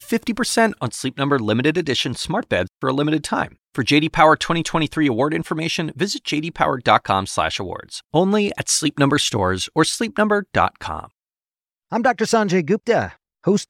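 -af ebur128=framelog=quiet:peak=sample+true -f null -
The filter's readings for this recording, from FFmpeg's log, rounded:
Integrated loudness:
  I:         -19.5 LUFS
  Threshold: -29.7 LUFS
Loudness range:
  LRA:         2.1 LU
  Threshold: -39.7 LUFS
  LRA low:   -20.9 LUFS
  LRA high:  -18.8 LUFS
Sample peak:
  Peak:       -1.2 dBFS
True peak:
  Peak:       -1.2 dBFS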